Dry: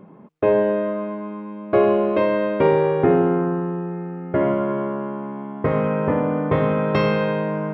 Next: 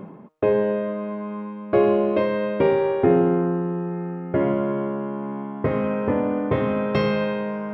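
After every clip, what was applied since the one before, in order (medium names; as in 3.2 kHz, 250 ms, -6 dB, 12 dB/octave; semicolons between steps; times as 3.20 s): reverse; upward compressor, threshold -25 dBFS; reverse; de-hum 155.2 Hz, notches 30; dynamic bell 1.2 kHz, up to -4 dB, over -34 dBFS, Q 0.89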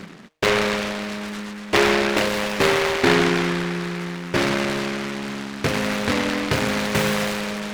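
delay time shaken by noise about 1.5 kHz, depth 0.28 ms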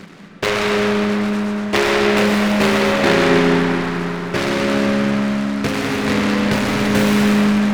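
reverberation RT60 4.3 s, pre-delay 80 ms, DRR -1 dB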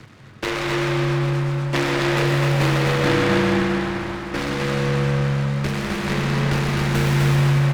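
frequency shift -67 Hz; on a send: delay 257 ms -4 dB; on the sum: trim -6 dB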